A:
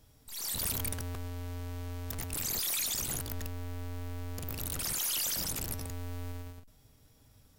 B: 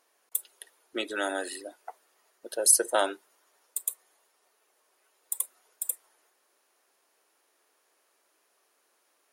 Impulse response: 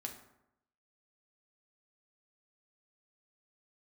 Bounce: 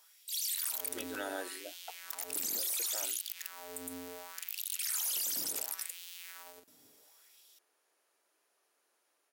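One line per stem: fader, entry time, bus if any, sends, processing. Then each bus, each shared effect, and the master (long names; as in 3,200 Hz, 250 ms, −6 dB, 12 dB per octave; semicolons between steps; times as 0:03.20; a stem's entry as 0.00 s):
−2.5 dB, 0.00 s, no send, high-shelf EQ 3,300 Hz +9.5 dB; auto-filter high-pass sine 0.7 Hz 280–3,200 Hz
−18.0 dB, 0.00 s, no send, automatic gain control gain up to 12 dB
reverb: not used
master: notch filter 1,100 Hz, Q 24; brickwall limiter −26.5 dBFS, peak gain reduction 11 dB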